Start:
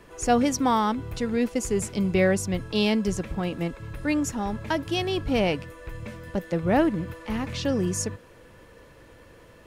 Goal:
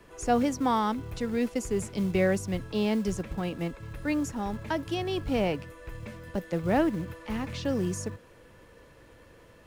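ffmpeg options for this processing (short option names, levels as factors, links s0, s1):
-filter_complex "[0:a]acrossover=split=310|840|1800[s0][s1][s2][s3];[s0]acrusher=bits=6:mode=log:mix=0:aa=0.000001[s4];[s3]alimiter=level_in=1.41:limit=0.0631:level=0:latency=1:release=161,volume=0.708[s5];[s4][s1][s2][s5]amix=inputs=4:normalize=0,volume=0.668"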